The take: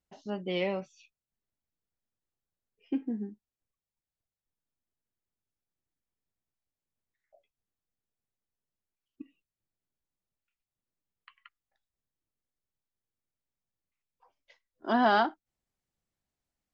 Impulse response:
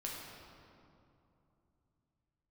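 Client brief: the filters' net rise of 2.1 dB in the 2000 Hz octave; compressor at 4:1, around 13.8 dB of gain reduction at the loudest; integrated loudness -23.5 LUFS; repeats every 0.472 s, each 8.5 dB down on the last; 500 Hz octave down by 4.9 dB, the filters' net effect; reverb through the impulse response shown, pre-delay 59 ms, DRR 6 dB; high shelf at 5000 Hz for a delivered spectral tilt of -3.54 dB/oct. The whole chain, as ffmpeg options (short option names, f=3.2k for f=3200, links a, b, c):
-filter_complex "[0:a]equalizer=f=500:t=o:g=-7.5,equalizer=f=2k:t=o:g=4.5,highshelf=f=5k:g=-6,acompressor=threshold=-38dB:ratio=4,aecho=1:1:472|944|1416|1888:0.376|0.143|0.0543|0.0206,asplit=2[a][b];[1:a]atrim=start_sample=2205,adelay=59[c];[b][c]afir=irnorm=-1:irlink=0,volume=-6.5dB[d];[a][d]amix=inputs=2:normalize=0,volume=21dB"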